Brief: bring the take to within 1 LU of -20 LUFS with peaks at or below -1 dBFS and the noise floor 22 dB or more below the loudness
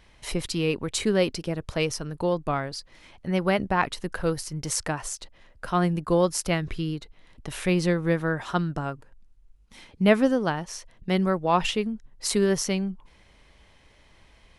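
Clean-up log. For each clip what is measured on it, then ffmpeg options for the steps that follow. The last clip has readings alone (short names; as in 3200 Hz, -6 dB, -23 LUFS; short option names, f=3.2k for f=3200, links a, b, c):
loudness -26.5 LUFS; peak -5.0 dBFS; loudness target -20.0 LUFS
-> -af "volume=6.5dB,alimiter=limit=-1dB:level=0:latency=1"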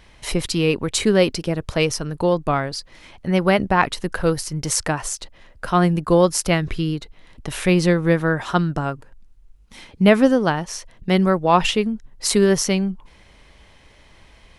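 loudness -20.0 LUFS; peak -1.0 dBFS; noise floor -51 dBFS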